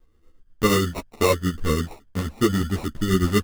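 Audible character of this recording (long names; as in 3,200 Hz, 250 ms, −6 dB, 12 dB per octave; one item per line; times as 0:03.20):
phaser sweep stages 8, 1.8 Hz, lowest notch 760–2,000 Hz
aliases and images of a low sample rate 1,600 Hz, jitter 0%
tremolo triangle 8.4 Hz, depth 55%
a shimmering, thickened sound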